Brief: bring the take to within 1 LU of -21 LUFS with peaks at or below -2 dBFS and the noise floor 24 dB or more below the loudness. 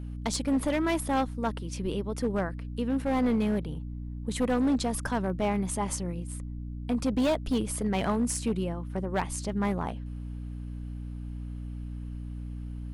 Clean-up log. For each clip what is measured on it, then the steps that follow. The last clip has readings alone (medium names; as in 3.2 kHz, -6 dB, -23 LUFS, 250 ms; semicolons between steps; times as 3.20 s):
clipped samples 1.6%; clipping level -21.0 dBFS; hum 60 Hz; highest harmonic 300 Hz; hum level -35 dBFS; loudness -30.5 LUFS; peak level -21.0 dBFS; loudness target -21.0 LUFS
-> clip repair -21 dBFS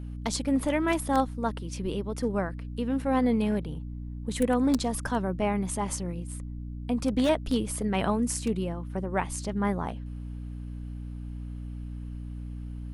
clipped samples 0.0%; hum 60 Hz; highest harmonic 300 Hz; hum level -35 dBFS
-> de-hum 60 Hz, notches 5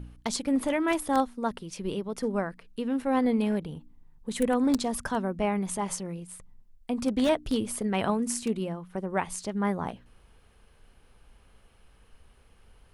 hum not found; loudness -29.0 LUFS; peak level -11.5 dBFS; loudness target -21.0 LUFS
-> trim +8 dB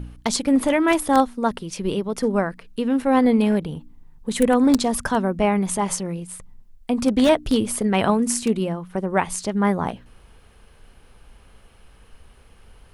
loudness -21.0 LUFS; peak level -3.5 dBFS; noise floor -51 dBFS